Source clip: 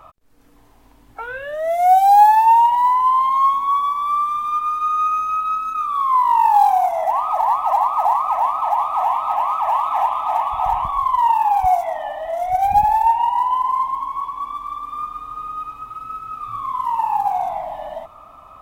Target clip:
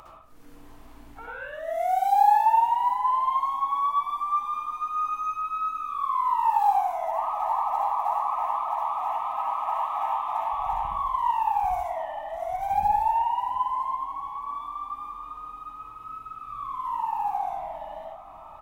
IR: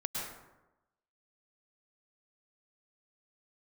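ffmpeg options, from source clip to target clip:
-filter_complex "[0:a]asplit=2[link_01][link_02];[link_02]adelay=711,lowpass=frequency=1600:poles=1,volume=-16dB,asplit=2[link_03][link_04];[link_04]adelay=711,lowpass=frequency=1600:poles=1,volume=0.46,asplit=2[link_05][link_06];[link_06]adelay=711,lowpass=frequency=1600:poles=1,volume=0.46,asplit=2[link_07][link_08];[link_08]adelay=711,lowpass=frequency=1600:poles=1,volume=0.46[link_09];[link_01][link_03][link_05][link_07][link_09]amix=inputs=5:normalize=0,acompressor=mode=upward:threshold=-29dB:ratio=2.5[link_10];[1:a]atrim=start_sample=2205,asetrate=79380,aresample=44100[link_11];[link_10][link_11]afir=irnorm=-1:irlink=0,volume=-7dB"

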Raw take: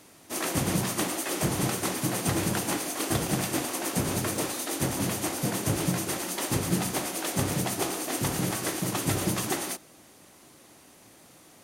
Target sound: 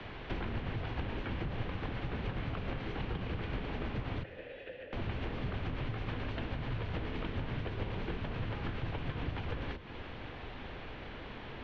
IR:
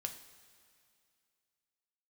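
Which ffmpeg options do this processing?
-filter_complex "[0:a]acompressor=threshold=-39dB:ratio=6,highpass=frequency=170:width_type=q:width=0.5412,highpass=frequency=170:width_type=q:width=1.307,lowpass=frequency=3600:width_type=q:width=0.5176,lowpass=frequency=3600:width_type=q:width=0.7071,lowpass=frequency=3600:width_type=q:width=1.932,afreqshift=-290,asettb=1/sr,asplit=3[link_01][link_02][link_03];[link_01]atrim=end=4.234[link_04];[link_02]atrim=start=4.23:end=4.93,asetpts=PTS-STARTPTS,afade=type=in:duration=0.004:curve=qsin,afade=type=out:start_time=0.696:duration=0.004:curve=qsin,asplit=3[link_05][link_06][link_07];[link_05]bandpass=frequency=530:width_type=q:width=8,volume=0dB[link_08];[link_06]bandpass=frequency=1840:width_type=q:width=8,volume=-6dB[link_09];[link_07]bandpass=frequency=2480:width_type=q:width=8,volume=-9dB[link_10];[link_08][link_09][link_10]amix=inputs=3:normalize=0[link_11];[link_03]atrim=start=4.926[link_12];[link_04][link_11]acrossfade=duration=0.004:curve1=hsin:curve2=qsin[link_13];[link_13][link_12]acrossfade=duration=0.004:curve1=qsin:curve2=hsin,asplit=2[link_14][link_15];[1:a]atrim=start_sample=2205,asetrate=26901,aresample=44100[link_16];[link_15][link_16]afir=irnorm=-1:irlink=0,volume=-10.5dB[link_17];[link_14][link_17]amix=inputs=2:normalize=0,acrossover=split=86|290[link_18][link_19][link_20];[link_18]acompressor=threshold=-49dB:ratio=4[link_21];[link_19]acompressor=threshold=-48dB:ratio=4[link_22];[link_20]acompressor=threshold=-53dB:ratio=4[link_23];[link_21][link_22][link_23]amix=inputs=3:normalize=0,volume=10dB"

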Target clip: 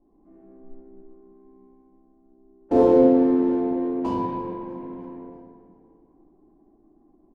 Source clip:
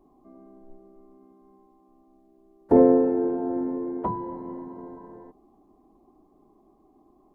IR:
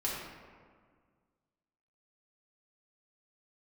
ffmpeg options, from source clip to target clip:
-filter_complex "[0:a]adynamicsmooth=sensitivity=6.5:basefreq=650,aecho=1:1:320|640|960|1280:0.0668|0.0368|0.0202|0.0111[link_01];[1:a]atrim=start_sample=2205,asetrate=37485,aresample=44100[link_02];[link_01][link_02]afir=irnorm=-1:irlink=0,volume=-5.5dB"

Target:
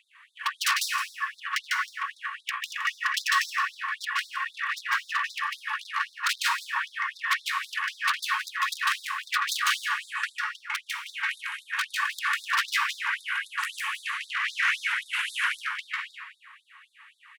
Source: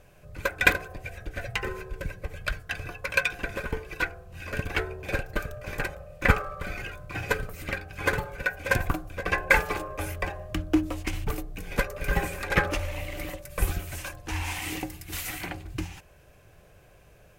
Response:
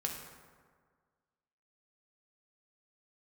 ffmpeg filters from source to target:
-filter_complex "[0:a]bandreject=frequency=144.7:width_type=h:width=4,bandreject=frequency=289.4:width_type=h:width=4,bandreject=frequency=434.1:width_type=h:width=4,bandreject=frequency=578.8:width_type=h:width=4,bandreject=frequency=723.5:width_type=h:width=4,bandreject=frequency=868.2:width_type=h:width=4,bandreject=frequency=1012.9:width_type=h:width=4,bandreject=frequency=1157.6:width_type=h:width=4,bandreject=frequency=1302.3:width_type=h:width=4,bandreject=frequency=1447:width_type=h:width=4,bandreject=frequency=1591.7:width_type=h:width=4,bandreject=frequency=1736.4:width_type=h:width=4,bandreject=frequency=1881.1:width_type=h:width=4,bandreject=frequency=2025.8:width_type=h:width=4,bandreject=frequency=2170.5:width_type=h:width=4,bandreject=frequency=2315.2:width_type=h:width=4,bandreject=frequency=2459.9:width_type=h:width=4,bandreject=frequency=2604.6:width_type=h:width=4,bandreject=frequency=2749.3:width_type=h:width=4,bandreject=frequency=2894:width_type=h:width=4,bandreject=frequency=3038.7:width_type=h:width=4,bandreject=frequency=3183.4:width_type=h:width=4,bandreject=frequency=3328.1:width_type=h:width=4,bandreject=frequency=3472.8:width_type=h:width=4,bandreject=frequency=3617.5:width_type=h:width=4,bandreject=frequency=3762.2:width_type=h:width=4,acontrast=51,highshelf=frequency=5300:width_type=q:width=3:gain=-11.5,asetrate=32097,aresample=44100,atempo=1.37395,aeval=exprs='(mod(2.66*val(0)+1,2)-1)/2.66':channel_layout=same,asplit=2[link_01][link_02];[link_02]highpass=frequency=720:poles=1,volume=16dB,asoftclip=type=tanh:threshold=-8dB[link_03];[link_01][link_03]amix=inputs=2:normalize=0,lowpass=frequency=5000:poles=1,volume=-6dB,volume=13.5dB,asoftclip=hard,volume=-13.5dB,aecho=1:1:167:0.237,asplit=2[link_04][link_05];[1:a]atrim=start_sample=2205,adelay=149[link_06];[link_05][link_06]afir=irnorm=-1:irlink=0,volume=-0.5dB[link_07];[link_04][link_07]amix=inputs=2:normalize=0,afftfilt=real='re*gte(b*sr/1024,850*pow(3600/850,0.5+0.5*sin(2*PI*3.8*pts/sr)))':imag='im*gte(b*sr/1024,850*pow(3600/850,0.5+0.5*sin(2*PI*3.8*pts/sr)))':win_size=1024:overlap=0.75,volume=-7dB"

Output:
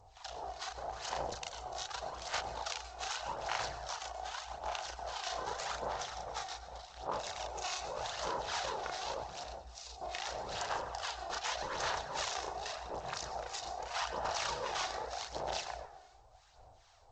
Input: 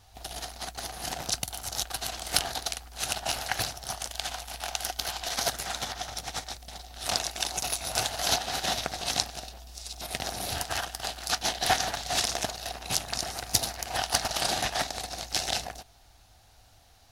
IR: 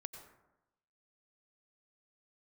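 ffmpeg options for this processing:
-filter_complex "[0:a]alimiter=limit=-12.5dB:level=0:latency=1:release=210,acrossover=split=1000[link_01][link_02];[link_01]aeval=exprs='val(0)*(1-1/2+1/2*cos(2*PI*2.4*n/s))':channel_layout=same[link_03];[link_02]aeval=exprs='val(0)*(1-1/2-1/2*cos(2*PI*2.4*n/s))':channel_layout=same[link_04];[link_03][link_04]amix=inputs=2:normalize=0,asplit=2[link_05][link_06];[1:a]atrim=start_sample=2205,adelay=35[link_07];[link_06][link_07]afir=irnorm=-1:irlink=0,volume=2dB[link_08];[link_05][link_08]amix=inputs=2:normalize=0,afftfilt=real='re*lt(hypot(re,im),0.0708)':imag='im*lt(hypot(re,im),0.0708)':win_size=1024:overlap=0.75,equalizer=frequency=250:width_type=o:width=1:gain=-7,equalizer=frequency=500:width_type=o:width=1:gain=9,equalizer=frequency=1000:width_type=o:width=1:gain=10,aphaser=in_gain=1:out_gain=1:delay=2.8:decay=0.38:speed=0.84:type=sinusoidal,volume=-7dB" -ar 16000 -c:a g722

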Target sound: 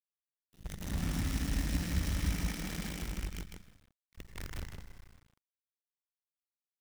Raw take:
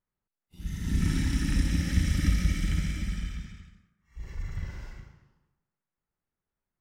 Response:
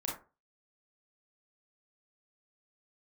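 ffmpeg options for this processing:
-filter_complex "[0:a]acrusher=bits=6:dc=4:mix=0:aa=0.000001,asettb=1/sr,asplit=3[link_01][link_02][link_03];[link_01]atrim=end=2.324[link_04];[link_02]atrim=start=2.32:end=3.02,asetpts=PTS-STARTPTS,afade=type=in:duration=0.004:curve=qsin,afade=type=out:start_time=0.696:duration=0.004:curve=qsin,lowshelf=frequency=150:width_type=q:width=1.5:gain=-8.5[link_05];[link_03]atrim=start=3.016[link_06];[link_04][link_05]acrossfade=duration=0.004:curve1=hsin:curve2=qsin[link_07];[link_07][link_06]acrossfade=duration=0.004:curve1=qsin:curve2=hsin,aecho=1:1:156:0.631,volume=-9dB"

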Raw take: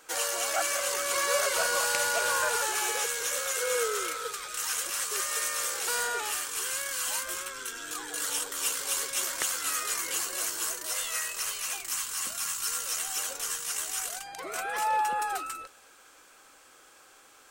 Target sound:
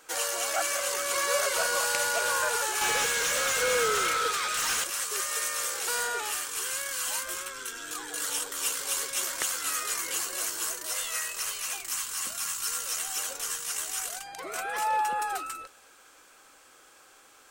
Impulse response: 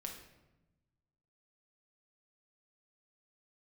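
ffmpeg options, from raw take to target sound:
-filter_complex "[0:a]asettb=1/sr,asplit=3[link_01][link_02][link_03];[link_01]atrim=end=2.814[link_04];[link_02]atrim=start=2.81:end=4.84,asetpts=PTS-STARTPTS,afade=type=in:duration=0.004:curve=qsin,afade=type=out:start_time=2.026:duration=0.004:curve=qsin,asplit=2[link_05][link_06];[link_06]highpass=frequency=720:poles=1,volume=20dB,asoftclip=type=tanh:threshold=-18dB[link_07];[link_05][link_07]amix=inputs=2:normalize=0,lowpass=frequency=4600:poles=1,volume=-6dB[link_08];[link_03]atrim=start=4.836[link_09];[link_04][link_08]acrossfade=duration=0.004:curve1=hsin:curve2=qsin[link_10];[link_10][link_09]acrossfade=duration=0.004:curve1=qsin:curve2=hsin"

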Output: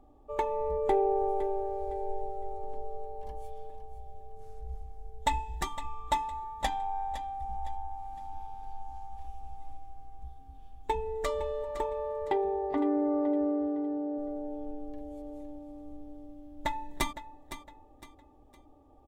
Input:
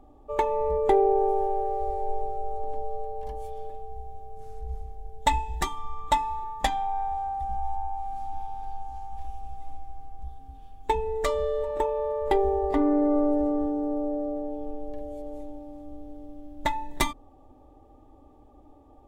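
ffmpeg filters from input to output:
ffmpeg -i in.wav -filter_complex "[0:a]asettb=1/sr,asplit=3[link_01][link_02][link_03];[link_01]atrim=end=12.254[link_04];[link_02]atrim=start=12.25:end=14.18,asetpts=PTS-STARTPTS,afade=type=in:duration=0.004:curve=qsin,afade=type=out:start_time=1.926:duration=0.004:curve=qsin,highpass=120,lowpass=3800[link_05];[link_03]atrim=start=14.176[link_06];[link_04][link_05]acrossfade=duration=0.004:curve1=hsin:curve2=qsin[link_07];[link_07][link_06]acrossfade=duration=0.004:curve1=qsin:curve2=hsin,aecho=1:1:510|1020|1530:0.251|0.0829|0.0274,volume=-5.5dB" out.wav

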